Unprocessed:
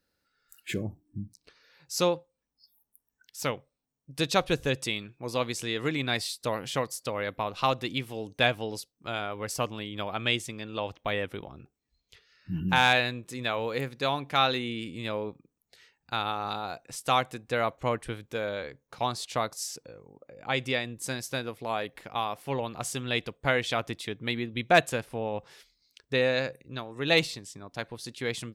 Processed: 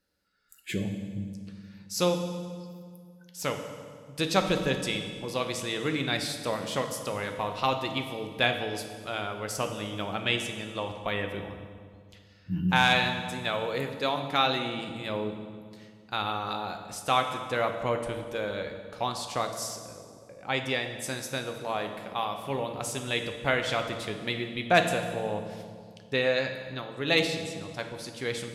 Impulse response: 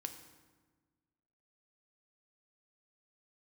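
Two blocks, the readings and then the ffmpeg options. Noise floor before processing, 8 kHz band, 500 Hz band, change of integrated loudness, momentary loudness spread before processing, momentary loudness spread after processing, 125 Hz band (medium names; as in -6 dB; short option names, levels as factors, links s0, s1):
-83 dBFS, 0.0 dB, +0.5 dB, 0.0 dB, 13 LU, 15 LU, +0.5 dB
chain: -filter_complex "[1:a]atrim=start_sample=2205,asetrate=26901,aresample=44100[s0];[0:a][s0]afir=irnorm=-1:irlink=0"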